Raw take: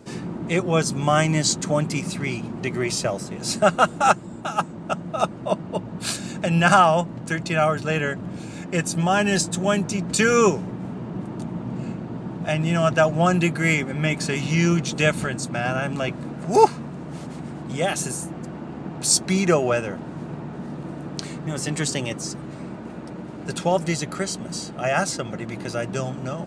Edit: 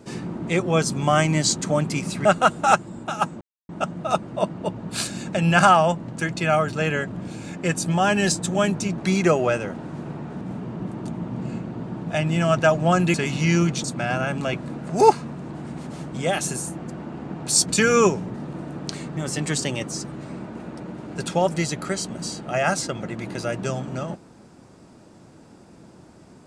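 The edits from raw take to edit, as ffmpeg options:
-filter_complex "[0:a]asplit=11[a][b][c][d][e][f][g][h][i][j][k];[a]atrim=end=2.252[l];[b]atrim=start=3.618:end=4.78,asetpts=PTS-STARTPTS,afade=t=out:st=1.158:d=0.004:c=hsin,apad=pad_dur=0.28[m];[c]atrim=start=4.78:end=10.072,asetpts=PTS-STARTPTS,afade=t=in:d=0.004:c=hsin[n];[d]atrim=start=19.208:end=20.642[o];[e]atrim=start=10.748:end=13.482[p];[f]atrim=start=14.238:end=14.942[q];[g]atrim=start=15.388:end=17.042[r];[h]atrim=start=17.038:end=17.682,asetpts=PTS-STARTPTS,areverse[s];[i]atrim=start=17.678:end=19.212[t];[j]atrim=start=10.068:end=10.752[u];[k]atrim=start=20.638[v];[m][n]concat=n=2:v=0:a=1[w];[l][w]acrossfade=d=0.004:c1=hsin:c2=hsin[x];[x][o]acrossfade=d=0.004:c1=hsin:c2=hsin[y];[y][p]acrossfade=d=0.004:c1=hsin:c2=hsin[z];[z][q]acrossfade=d=0.004:c1=hsin:c2=hsin[aa];[aa][r]acrossfade=d=0.004:c1=hsin:c2=hsin[ab];[ab][s]acrossfade=d=0.004:c1=hsin:c2=hsin[ac];[ac][t]acrossfade=d=0.004:c1=hsin:c2=hsin[ad];[ad][u]acrossfade=d=0.004:c1=hsin:c2=hsin[ae];[ae][v]acrossfade=d=0.004:c1=hsin:c2=hsin"

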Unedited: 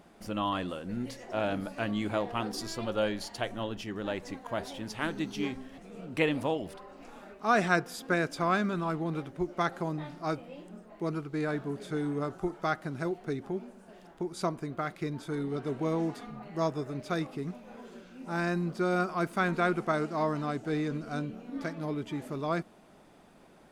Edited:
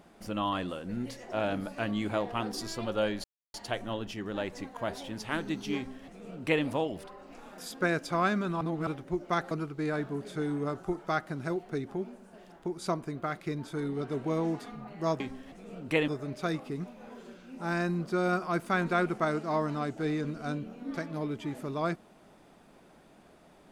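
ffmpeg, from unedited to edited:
-filter_complex "[0:a]asplit=8[a][b][c][d][e][f][g][h];[a]atrim=end=3.24,asetpts=PTS-STARTPTS,afade=t=out:st=3.236:d=0.004:c=hsin,apad=pad_dur=0.3[i];[b]atrim=start=3.24:end=7.282,asetpts=PTS-STARTPTS,afade=t=in:d=0.004:c=hsin[j];[c]atrim=start=7.858:end=8.892[k];[d]atrim=start=8.888:end=9.152,asetpts=PTS-STARTPTS,areverse[l];[e]atrim=start=9.148:end=9.792[m];[f]atrim=start=11.058:end=16.752[n];[g]atrim=start=5.458:end=6.342[o];[h]atrim=start=16.748[p];[i][j]concat=n=2:v=0:a=1[q];[q][k]acrossfade=d=0.004:c1=hsin:c2=hsin[r];[r][l]acrossfade=d=0.004:c1=hsin:c2=hsin[s];[s][m]acrossfade=d=0.004:c1=hsin:c2=hsin[t];[t][n]acrossfade=d=0.004:c1=hsin:c2=hsin[u];[u][o]acrossfade=d=0.004:c1=hsin:c2=hsin[v];[v][p]acrossfade=d=0.004:c1=hsin:c2=hsin"

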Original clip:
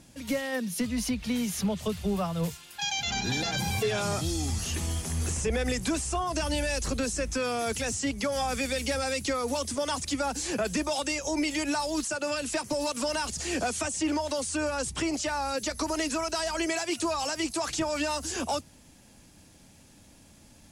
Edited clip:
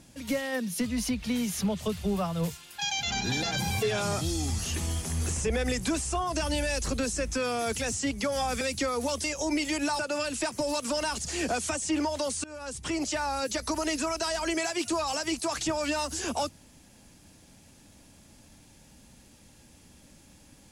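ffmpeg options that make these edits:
-filter_complex "[0:a]asplit=5[a][b][c][d][e];[a]atrim=end=8.612[f];[b]atrim=start=9.078:end=9.712[g];[c]atrim=start=11.098:end=11.852[h];[d]atrim=start=12.108:end=14.56,asetpts=PTS-STARTPTS,afade=t=out:st=2.448:d=0.004:c=hsin:silence=0.0841395[i];[e]atrim=start=14.56,asetpts=PTS-STARTPTS,afade=t=in:d=0.6:silence=0.0841395[j];[f][g]acrossfade=d=0.004:c1=hsin:c2=hsin[k];[k][h]acrossfade=d=0.004:c1=hsin:c2=hsin[l];[i][j]concat=n=2:v=0:a=1[m];[l][m]acrossfade=d=0.004:c1=hsin:c2=hsin"

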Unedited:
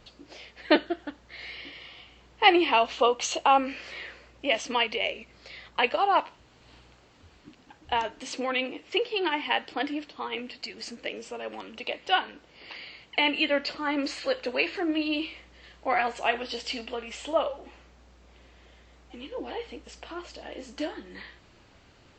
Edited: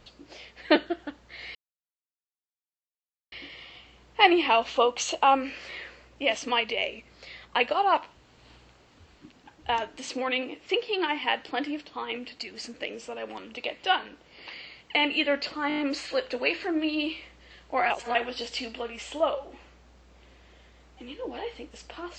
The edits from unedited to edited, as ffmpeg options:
-filter_complex "[0:a]asplit=9[a][b][c][d][e][f][g][h][i];[a]atrim=end=1.55,asetpts=PTS-STARTPTS,afade=t=out:st=1.546:d=0.004:c=hsin,apad=pad_dur=1.77[j];[b]atrim=start=1.55:end=13.932,asetpts=PTS-STARTPTS,afade=t=in:d=0.004:c=hsin[k];[c]atrim=start=13.908:end=13.932[l];[d]atrim=start=13.908:end=13.932[m];[e]atrim=start=13.908:end=13.932[n];[f]atrim=start=13.908:end=13.932[o];[g]atrim=start=13.908:end=16.032[p];[h]atrim=start=16.028:end=16.282,asetpts=PTS-STARTPTS,areverse[q];[i]atrim=start=16.278[r];[j][k]concat=n=2:v=0:a=1[s];[s][l]acrossfade=d=0.004:c1=hsin:c2=hsin[t];[t][m]acrossfade=d=0.004:c1=hsin:c2=hsin[u];[u][n]acrossfade=d=0.004:c1=hsin:c2=hsin[v];[v][o]acrossfade=d=0.004:c1=hsin:c2=hsin[w];[w][p]acrossfade=d=0.004:c1=hsin:c2=hsin[x];[x][q]acrossfade=d=0.004:c1=hsin:c2=hsin[y];[y][r]acrossfade=d=0.004:c1=hsin:c2=hsin"

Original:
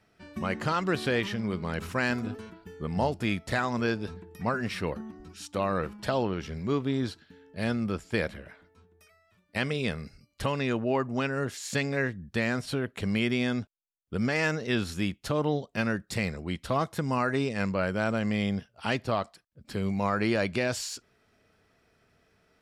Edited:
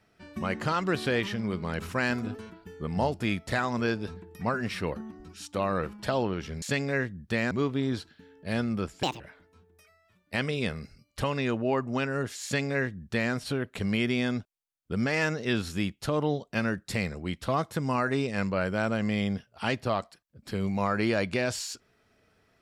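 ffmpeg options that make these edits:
-filter_complex "[0:a]asplit=5[a][b][c][d][e];[a]atrim=end=6.622[f];[b]atrim=start=11.658:end=12.552[g];[c]atrim=start=6.618:end=8.144[h];[d]atrim=start=8.14:end=8.42,asetpts=PTS-STARTPTS,asetrate=72765,aresample=44100[i];[e]atrim=start=8.416[j];[f][g]acrossfade=d=0.004:c1=hsin:c2=hsin[k];[k][h]acrossfade=d=0.004:c1=hsin:c2=hsin[l];[l][i]acrossfade=d=0.004:c1=hsin:c2=hsin[m];[m][j]acrossfade=d=0.004:c1=hsin:c2=hsin"

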